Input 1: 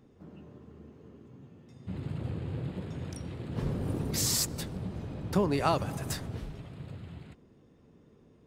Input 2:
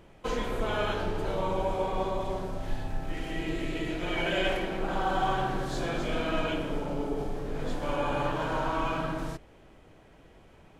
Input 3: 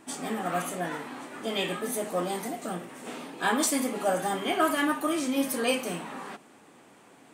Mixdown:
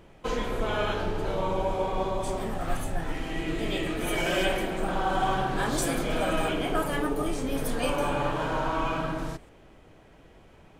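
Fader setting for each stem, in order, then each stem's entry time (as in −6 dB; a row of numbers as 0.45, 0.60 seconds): −15.0, +1.5, −5.0 decibels; 0.00, 0.00, 2.15 seconds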